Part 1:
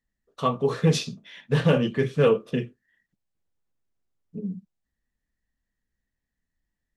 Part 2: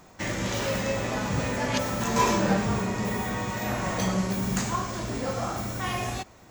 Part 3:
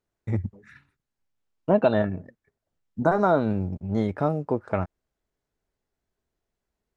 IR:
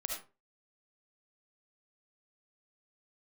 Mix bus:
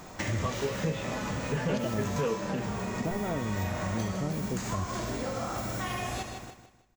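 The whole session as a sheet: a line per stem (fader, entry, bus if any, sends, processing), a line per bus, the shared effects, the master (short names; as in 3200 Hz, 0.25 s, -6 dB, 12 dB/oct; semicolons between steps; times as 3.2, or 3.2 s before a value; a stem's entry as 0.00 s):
-2.5 dB, 0.00 s, no send, no echo send, steep low-pass 3300 Hz
+2.5 dB, 0.00 s, send -3.5 dB, echo send -6 dB, compressor, threshold -33 dBFS, peak gain reduction 14.5 dB
-11.5 dB, 0.00 s, no send, no echo send, tilt -4.5 dB/oct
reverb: on, RT60 0.30 s, pre-delay 30 ms
echo: feedback echo 0.156 s, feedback 35%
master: compressor 2:1, threshold -33 dBFS, peak gain reduction 10 dB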